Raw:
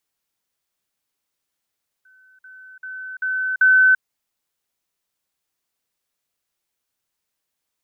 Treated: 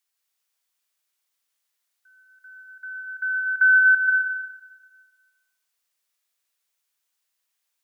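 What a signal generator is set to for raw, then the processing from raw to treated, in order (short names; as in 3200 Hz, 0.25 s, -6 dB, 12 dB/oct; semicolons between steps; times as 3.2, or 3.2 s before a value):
level ladder 1520 Hz -50 dBFS, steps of 10 dB, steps 5, 0.34 s 0.05 s
HPF 1500 Hz 6 dB/oct; plate-style reverb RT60 1.4 s, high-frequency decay 0.8×, pre-delay 0.115 s, DRR 0 dB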